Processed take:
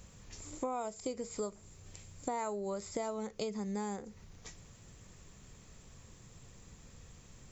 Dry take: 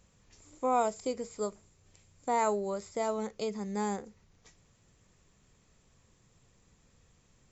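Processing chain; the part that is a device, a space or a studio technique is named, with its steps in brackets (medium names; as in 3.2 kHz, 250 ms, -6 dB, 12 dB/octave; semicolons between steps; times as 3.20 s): ASMR close-microphone chain (bass shelf 170 Hz +4 dB; compression 6:1, threshold -43 dBFS, peak gain reduction 19 dB; treble shelf 6.6 kHz +4.5 dB); trim +7.5 dB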